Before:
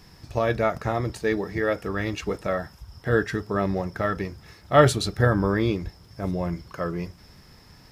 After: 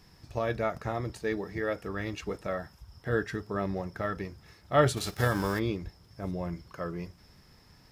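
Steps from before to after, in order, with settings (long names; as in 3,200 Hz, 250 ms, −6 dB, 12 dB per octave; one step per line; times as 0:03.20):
0:04.96–0:05.58: spectral envelope flattened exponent 0.6
level −7 dB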